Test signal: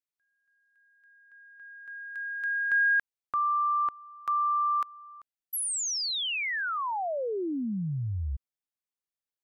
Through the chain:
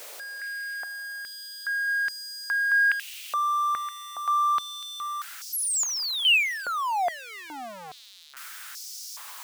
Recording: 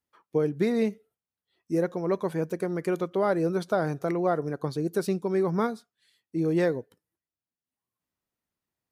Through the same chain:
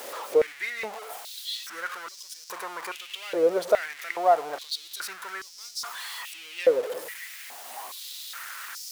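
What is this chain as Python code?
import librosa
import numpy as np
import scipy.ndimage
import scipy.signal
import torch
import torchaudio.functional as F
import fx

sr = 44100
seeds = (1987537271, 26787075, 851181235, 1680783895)

y = x + 0.5 * 10.0 ** (-30.0 / 20.0) * np.sign(x)
y = fx.filter_held_highpass(y, sr, hz=2.4, low_hz=530.0, high_hz=5300.0)
y = y * librosa.db_to_amplitude(-2.5)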